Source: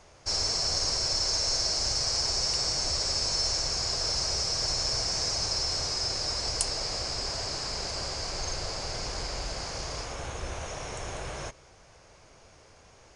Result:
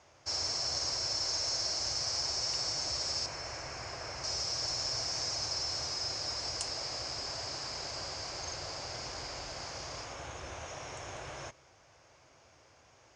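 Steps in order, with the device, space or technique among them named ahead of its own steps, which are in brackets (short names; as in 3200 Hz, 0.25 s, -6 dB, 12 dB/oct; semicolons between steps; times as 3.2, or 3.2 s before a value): car door speaker (speaker cabinet 92–7200 Hz, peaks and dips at 190 Hz -10 dB, 440 Hz -5 dB, 4200 Hz -3 dB); 3.26–4.24 resonant high shelf 3100 Hz -8.5 dB, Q 1.5; gain -4.5 dB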